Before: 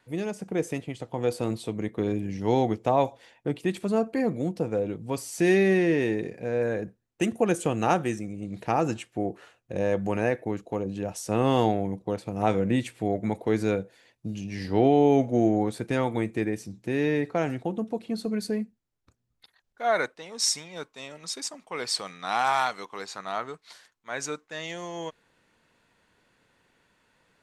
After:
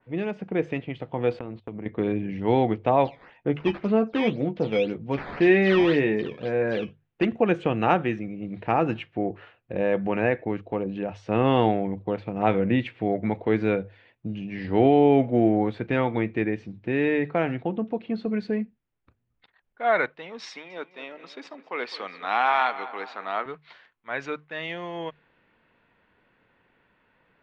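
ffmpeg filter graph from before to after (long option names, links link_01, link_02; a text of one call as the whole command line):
ffmpeg -i in.wav -filter_complex "[0:a]asettb=1/sr,asplit=3[link_01][link_02][link_03];[link_01]atrim=end=1.394[link_04];[link_02]atrim=start=1.39:end=1.86,asetpts=PTS-STARTPTS,afade=type=in:duration=0.004:curve=qsin,afade=type=out:start_time=0.466:duration=0.004:curve=qsin,aemphasis=mode=reproduction:type=75kf,agate=range=-26dB:threshold=-41dB:ratio=16:release=100:detection=peak,acompressor=threshold=-32dB:ratio=10:attack=3.2:release=140:knee=1:detection=peak[link_05];[link_03]atrim=start=1.856[link_06];[link_04][link_05]acrossfade=duration=0.004:curve1=hsin:curve2=qsin[link_07];[link_07][link_06]acrossfade=duration=0.004:curve1=qsin:curve2=hsin,asettb=1/sr,asplit=3[link_08][link_09][link_10];[link_08]atrim=end=3.054[link_11];[link_09]atrim=start=3.05:end=7.25,asetpts=PTS-STARTPTS,afade=type=in:duration=0.004:curve=qsin,afade=type=out:start_time=4.196:duration=0.004:curve=qsin,acrusher=samples=9:mix=1:aa=0.000001:lfo=1:lforange=14.4:lforate=1.9,asplit=2[link_12][link_13];[link_13]adelay=14,volume=-8dB[link_14];[link_12][link_14]amix=inputs=2:normalize=0,atrim=end_sample=185220[link_15];[link_10]atrim=start=7.246[link_16];[link_11][link_15]acrossfade=duration=0.004:curve1=hsin:curve2=qsin[link_17];[link_17][link_16]acrossfade=duration=0.004:curve1=qsin:curve2=hsin,asettb=1/sr,asplit=3[link_18][link_19][link_20];[link_18]atrim=end=20.494[link_21];[link_19]atrim=start=20.49:end=23.46,asetpts=PTS-STARTPTS,afade=type=in:duration=0.004:curve=qsin,afade=type=out:start_time=2.966:duration=0.004:curve=qsin,highpass=frequency=230:width=0.5412,highpass=frequency=230:width=1.3066,asplit=2[link_22][link_23];[link_23]adelay=209,lowpass=frequency=2700:poles=1,volume=-14.5dB,asplit=2[link_24][link_25];[link_25]adelay=209,lowpass=frequency=2700:poles=1,volume=0.53,asplit=2[link_26][link_27];[link_27]adelay=209,lowpass=frequency=2700:poles=1,volume=0.53,asplit=2[link_28][link_29];[link_29]adelay=209,lowpass=frequency=2700:poles=1,volume=0.53,asplit=2[link_30][link_31];[link_31]adelay=209,lowpass=frequency=2700:poles=1,volume=0.53[link_32];[link_22][link_24][link_26][link_28][link_30][link_32]amix=inputs=6:normalize=0,atrim=end_sample=130977[link_33];[link_20]atrim=start=23.456[link_34];[link_21][link_33]acrossfade=duration=0.004:curve1=hsin:curve2=qsin[link_35];[link_35][link_34]acrossfade=duration=0.004:curve1=qsin:curve2=hsin,lowpass=frequency=2900:width=0.5412,lowpass=frequency=2900:width=1.3066,bandreject=frequency=50:width_type=h:width=6,bandreject=frequency=100:width_type=h:width=6,bandreject=frequency=150:width_type=h:width=6,adynamicequalizer=threshold=0.00794:dfrequency=1900:dqfactor=0.7:tfrequency=1900:tqfactor=0.7:attack=5:release=100:ratio=0.375:range=2.5:mode=boostabove:tftype=highshelf,volume=2dB" out.wav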